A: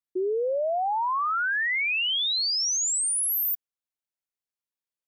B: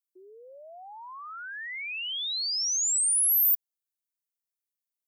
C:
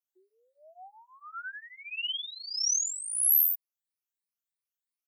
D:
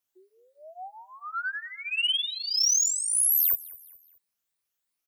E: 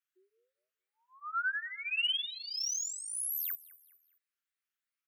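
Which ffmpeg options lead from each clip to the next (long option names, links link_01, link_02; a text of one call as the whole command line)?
ffmpeg -i in.wav -af "aderivative,acontrast=35,volume=-5.5dB" out.wav
ffmpeg -i in.wav -filter_complex "[0:a]afftfilt=real='re*pow(10,15/40*sin(2*PI*(0.91*log(max(b,1)*sr/1024/100)/log(2)-(3)*(pts-256)/sr)))':imag='im*pow(10,15/40*sin(2*PI*(0.91*log(max(b,1)*sr/1024/100)/log(2)-(3)*(pts-256)/sr)))':win_size=1024:overlap=0.75,highpass=830,asplit=2[link_01][link_02];[link_02]adelay=5.4,afreqshift=-0.65[link_03];[link_01][link_03]amix=inputs=2:normalize=1,volume=-3dB" out.wav
ffmpeg -i in.wav -af "alimiter=limit=-23.5dB:level=0:latency=1:release=33,asoftclip=type=tanh:threshold=-25dB,aecho=1:1:209|418|627:0.0891|0.0365|0.015,volume=8.5dB" out.wav
ffmpeg -i in.wav -filter_complex "[0:a]asuperstop=centerf=730:order=8:qfactor=0.92,acrossover=split=560 2700:gain=0.0891 1 0.224[link_01][link_02][link_03];[link_01][link_02][link_03]amix=inputs=3:normalize=0" out.wav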